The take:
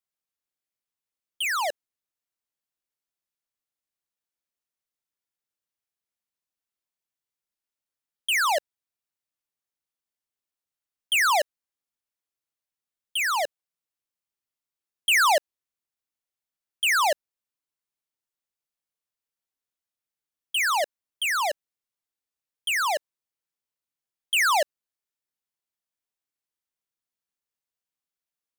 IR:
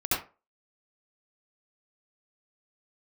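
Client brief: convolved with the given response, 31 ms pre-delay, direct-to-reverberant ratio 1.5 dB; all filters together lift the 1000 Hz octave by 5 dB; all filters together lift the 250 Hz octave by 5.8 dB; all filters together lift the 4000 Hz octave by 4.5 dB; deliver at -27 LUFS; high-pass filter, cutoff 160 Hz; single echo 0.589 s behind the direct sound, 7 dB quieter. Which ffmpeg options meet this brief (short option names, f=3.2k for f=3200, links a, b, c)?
-filter_complex "[0:a]highpass=160,equalizer=f=250:t=o:g=8.5,equalizer=f=1k:t=o:g=5.5,equalizer=f=4k:t=o:g=6,aecho=1:1:589:0.447,asplit=2[a][b];[1:a]atrim=start_sample=2205,adelay=31[c];[b][c]afir=irnorm=-1:irlink=0,volume=-12dB[d];[a][d]amix=inputs=2:normalize=0,volume=-7dB"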